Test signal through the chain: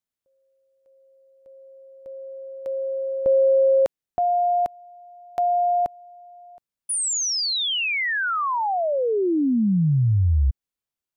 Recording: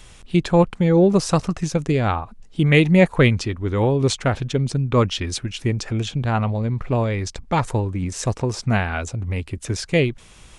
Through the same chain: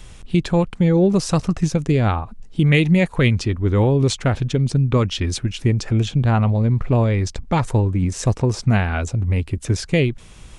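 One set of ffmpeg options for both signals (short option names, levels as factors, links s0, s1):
-filter_complex "[0:a]acrossover=split=1800[s0][s1];[s0]alimiter=limit=0.237:level=0:latency=1:release=270[s2];[s2][s1]amix=inputs=2:normalize=0,lowshelf=f=360:g=6.5"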